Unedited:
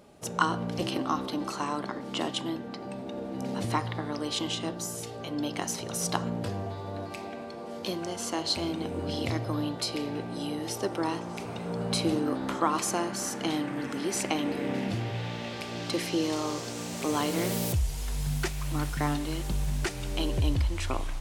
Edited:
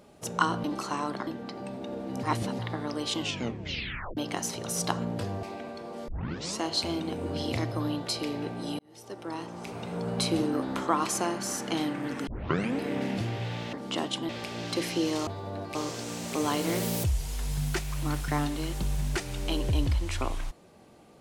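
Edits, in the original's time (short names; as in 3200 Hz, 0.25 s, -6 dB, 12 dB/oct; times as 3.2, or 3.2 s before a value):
0.64–1.33 cut
1.96–2.52 move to 15.46
3.48–3.84 reverse
4.44 tape stop 0.98 s
6.68–7.16 move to 16.44
7.81 tape start 0.52 s
10.52–11.66 fade in
14 tape start 0.51 s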